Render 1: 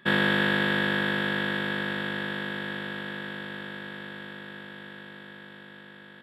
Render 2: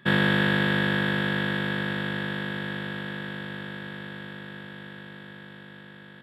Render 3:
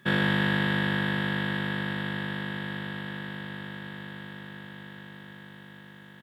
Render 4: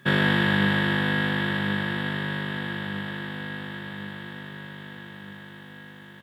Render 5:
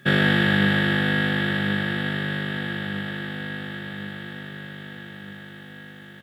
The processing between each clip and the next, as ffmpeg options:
-af "equalizer=f=120:t=o:w=0.96:g=10.5"
-af "acontrast=64,acrusher=bits=9:mix=0:aa=0.000001,aecho=1:1:159:0.266,volume=0.355"
-af "flanger=delay=7.3:depth=4.8:regen=64:speed=0.43:shape=sinusoidal,volume=2.51"
-af "asuperstop=centerf=1000:order=4:qfactor=3.8,volume=1.33"

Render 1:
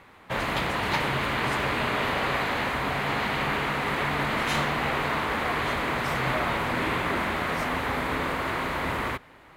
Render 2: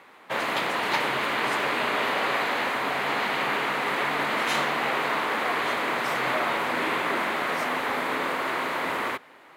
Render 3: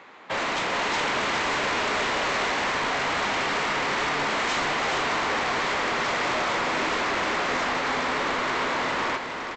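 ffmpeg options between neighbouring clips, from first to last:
-af "highpass=290,volume=1.19"
-af "aresample=16000,asoftclip=type=hard:threshold=0.0398,aresample=44100,aecho=1:1:415:0.531,volume=1.5"

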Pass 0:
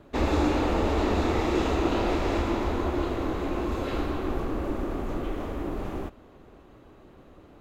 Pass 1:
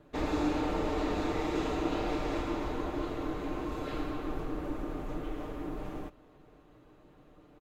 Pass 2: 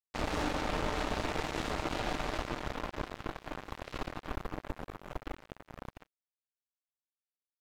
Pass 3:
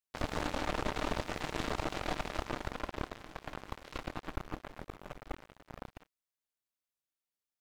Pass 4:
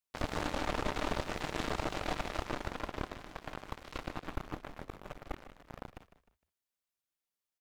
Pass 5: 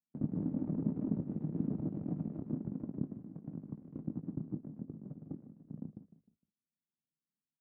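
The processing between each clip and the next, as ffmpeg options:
-af "aecho=1:1:6.6:0.51,volume=0.422"
-af "superequalizer=6b=0.447:7b=0.562,acrusher=bits=4:mix=0:aa=0.5"
-af "aeval=exprs='clip(val(0),-1,0.00562)':c=same,volume=1.12"
-filter_complex "[0:a]asplit=4[s0][s1][s2][s3];[s1]adelay=153,afreqshift=-30,volume=0.224[s4];[s2]adelay=306,afreqshift=-60,volume=0.0759[s5];[s3]adelay=459,afreqshift=-90,volume=0.026[s6];[s0][s4][s5][s6]amix=inputs=4:normalize=0"
-filter_complex "[0:a]asuperpass=centerf=190:order=4:qfactor=1.5,asplit=2[s0][s1];[s1]adelay=19,volume=0.237[s2];[s0][s2]amix=inputs=2:normalize=0,volume=3.16"

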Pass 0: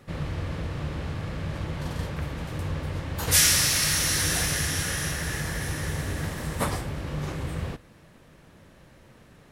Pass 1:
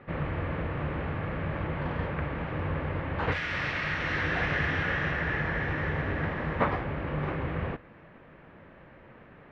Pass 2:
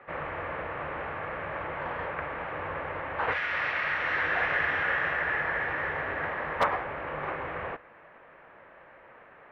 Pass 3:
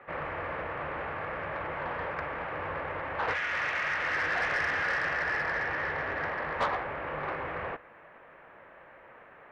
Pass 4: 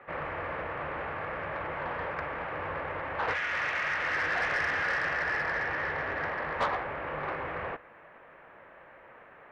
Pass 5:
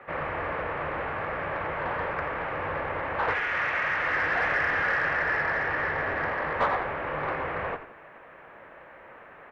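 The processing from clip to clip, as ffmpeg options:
-af "lowshelf=f=210:g=-8,alimiter=limit=0.15:level=0:latency=1:release=327,lowpass=f=2400:w=0.5412,lowpass=f=2400:w=1.3066,volume=1.68"
-filter_complex "[0:a]acrossover=split=480 2700:gain=0.1 1 0.224[s0][s1][s2];[s0][s1][s2]amix=inputs=3:normalize=0,aeval=exprs='0.112*(abs(mod(val(0)/0.112+3,4)-2)-1)':c=same,lowshelf=f=150:g=3,volume=1.58"
-af "asoftclip=type=tanh:threshold=0.075"
-af anull
-filter_complex "[0:a]acrossover=split=2800[s0][s1];[s1]acompressor=threshold=0.00251:ratio=4:attack=1:release=60[s2];[s0][s2]amix=inputs=2:normalize=0,asplit=4[s3][s4][s5][s6];[s4]adelay=85,afreqshift=-42,volume=0.282[s7];[s5]adelay=170,afreqshift=-84,volume=0.0841[s8];[s6]adelay=255,afreqshift=-126,volume=0.0254[s9];[s3][s7][s8][s9]amix=inputs=4:normalize=0,volume=1.58"

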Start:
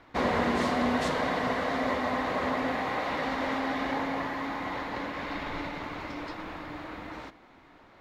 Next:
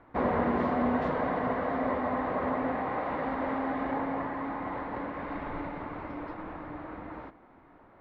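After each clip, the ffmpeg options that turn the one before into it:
-af "lowpass=1400"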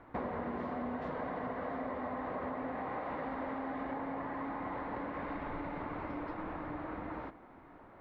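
-af "acompressor=threshold=0.0141:ratio=6,volume=1.12"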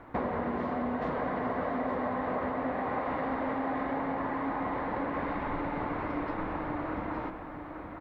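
-af "aecho=1:1:866:0.422,volume=2"

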